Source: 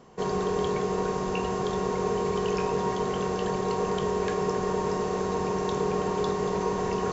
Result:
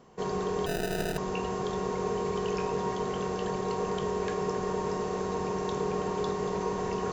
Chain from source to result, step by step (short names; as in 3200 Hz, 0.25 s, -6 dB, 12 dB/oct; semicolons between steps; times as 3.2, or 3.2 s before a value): 0.66–1.18 sample-rate reducer 1100 Hz, jitter 0%; gain -3.5 dB